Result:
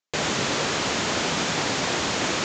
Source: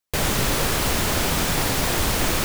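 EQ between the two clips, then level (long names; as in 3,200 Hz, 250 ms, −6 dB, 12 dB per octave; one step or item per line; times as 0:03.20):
high-pass filter 170 Hz 12 dB per octave
elliptic low-pass filter 7,100 Hz, stop band 40 dB
0.0 dB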